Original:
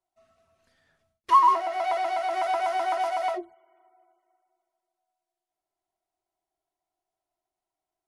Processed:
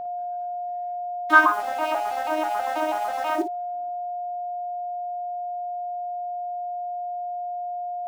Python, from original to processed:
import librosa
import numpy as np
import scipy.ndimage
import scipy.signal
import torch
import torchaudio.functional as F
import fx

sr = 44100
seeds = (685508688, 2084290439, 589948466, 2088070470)

p1 = fx.vocoder_arp(x, sr, chord='major triad', root=56, every_ms=162)
p2 = p1 + 0.54 * np.pad(p1, (int(3.2 * sr / 1000.0), 0))[:len(p1)]
p3 = fx.formant_shift(p2, sr, semitones=2)
p4 = fx.quant_dither(p3, sr, seeds[0], bits=6, dither='none')
p5 = p3 + F.gain(torch.from_numpy(p4), -3.0).numpy()
p6 = p5 + 10.0 ** (-25.0 / 20.0) * np.sin(2.0 * np.pi * 710.0 * np.arange(len(p5)) / sr)
p7 = p6 + fx.room_early_taps(p6, sr, ms=(18, 55), db=(-13.5, -10.5), dry=0)
y = F.gain(torch.from_numpy(p7), -5.0).numpy()